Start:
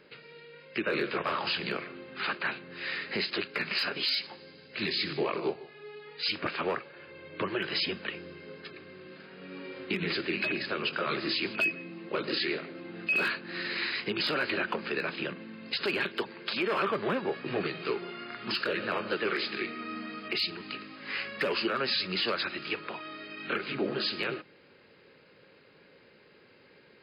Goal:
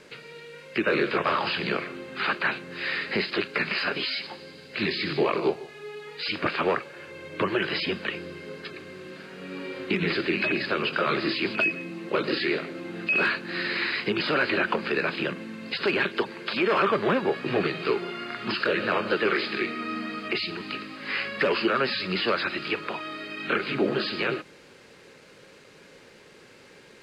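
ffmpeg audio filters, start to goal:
ffmpeg -i in.wav -filter_complex "[0:a]acrossover=split=2500[link_01][link_02];[link_02]acompressor=threshold=-38dB:ratio=4:attack=1:release=60[link_03];[link_01][link_03]amix=inputs=2:normalize=0,acrusher=bits=9:mix=0:aa=0.000001,lowpass=7400,volume=6.5dB" out.wav

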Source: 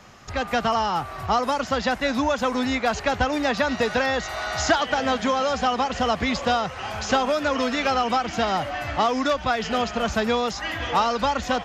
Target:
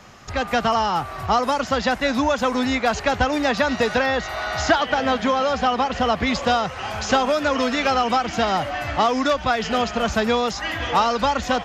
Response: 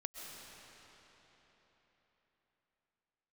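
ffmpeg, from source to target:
-filter_complex "[0:a]asettb=1/sr,asplit=3[link_01][link_02][link_03];[link_01]atrim=end=3.984[link_04];[link_02]atrim=start=3.98:end=6.27,asetpts=PTS-STARTPTS,afade=type=in:duration=0.004:curve=qsin,afade=type=out:start_time=2.286:duration=0.004:curve=qsin,equalizer=frequency=7700:width=1:gain=-6.5[link_05];[link_03]atrim=start=6.266[link_06];[link_04][link_05]acrossfade=duration=0.004:curve1=hsin:curve2=qsin[link_07];[link_07][link_06]acrossfade=duration=0.004:curve1=qsin:curve2=hsin,volume=2.5dB"

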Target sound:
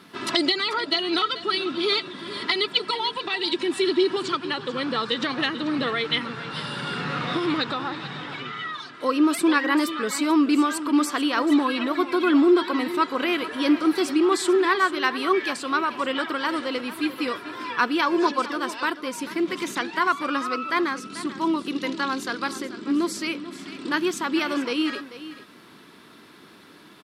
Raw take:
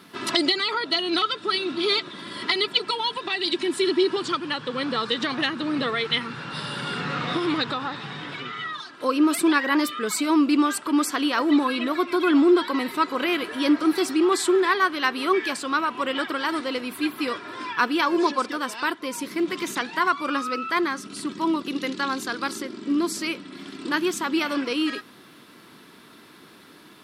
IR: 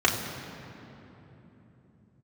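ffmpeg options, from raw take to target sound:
-filter_complex "[0:a]highshelf=frequency=9700:gain=-6.5,asplit=2[link_01][link_02];[link_02]aecho=0:1:439:0.2[link_03];[link_01][link_03]amix=inputs=2:normalize=0"

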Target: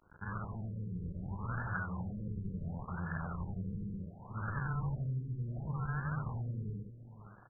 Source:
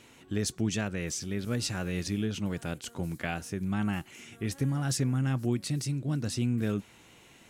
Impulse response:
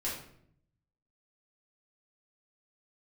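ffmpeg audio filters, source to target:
-filter_complex "[0:a]afftfilt=real='re':imag='-im':win_size=8192:overlap=0.75,acrossover=split=4900[link_01][link_02];[link_02]acompressor=threshold=-47dB:ratio=4:attack=1:release=60[link_03];[link_01][link_03]amix=inputs=2:normalize=0,highshelf=frequency=9700:gain=4,acrossover=split=790|3000[link_04][link_05][link_06];[link_04]acompressor=threshold=-44dB:ratio=4[link_07];[link_05]acompressor=threshold=-53dB:ratio=4[link_08];[link_06]acompressor=threshold=-49dB:ratio=4[link_09];[link_07][link_08][link_09]amix=inputs=3:normalize=0,acrusher=samples=42:mix=1:aa=0.000001:lfo=1:lforange=67.2:lforate=0.87,asoftclip=type=tanh:threshold=-40dB,firequalizer=gain_entry='entry(170,0);entry(280,-17);entry(650,-10);entry(940,-1);entry(1400,9);entry(9000,-9)':delay=0.05:min_phase=1,aeval=exprs='sgn(val(0))*max(abs(val(0))-0.00112,0)':channel_layout=same,asplit=2[link_10][link_11];[link_11]adelay=519,lowpass=frequency=1400:poles=1,volume=-14dB,asplit=2[link_12][link_13];[link_13]adelay=519,lowpass=frequency=1400:poles=1,volume=0.22[link_14];[link_10][link_12][link_14]amix=inputs=3:normalize=0,afftfilt=real='re*lt(b*sr/1024,480*pow(1800/480,0.5+0.5*sin(2*PI*0.69*pts/sr)))':imag='im*lt(b*sr/1024,480*pow(1800/480,0.5+0.5*sin(2*PI*0.69*pts/sr)))':win_size=1024:overlap=0.75,volume=12.5dB"

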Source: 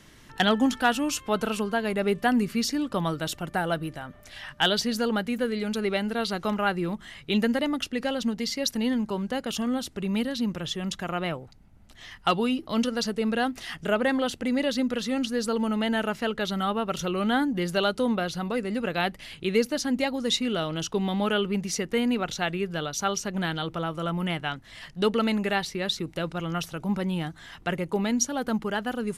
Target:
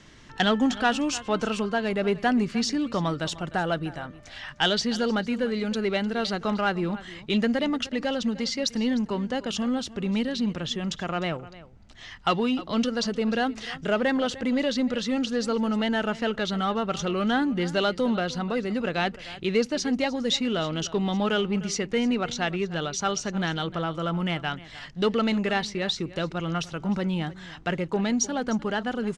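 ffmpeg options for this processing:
ffmpeg -i in.wav -filter_complex "[0:a]aecho=1:1:303:0.119,asplit=2[link_01][link_02];[link_02]volume=25dB,asoftclip=hard,volume=-25dB,volume=-6dB[link_03];[link_01][link_03]amix=inputs=2:normalize=0,lowpass=frequency=7300:width=0.5412,lowpass=frequency=7300:width=1.3066,volume=-2dB" out.wav

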